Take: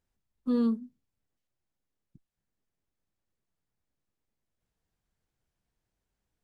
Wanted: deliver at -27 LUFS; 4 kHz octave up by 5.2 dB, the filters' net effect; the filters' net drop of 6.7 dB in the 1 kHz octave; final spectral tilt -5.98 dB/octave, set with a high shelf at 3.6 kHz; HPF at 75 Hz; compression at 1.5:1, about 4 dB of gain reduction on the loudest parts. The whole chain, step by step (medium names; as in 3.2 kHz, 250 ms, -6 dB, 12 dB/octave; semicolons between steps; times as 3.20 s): high-pass 75 Hz; peaking EQ 1 kHz -8.5 dB; treble shelf 3.6 kHz -4.5 dB; peaking EQ 4 kHz +9 dB; compression 1.5:1, threshold -34 dBFS; trim +7.5 dB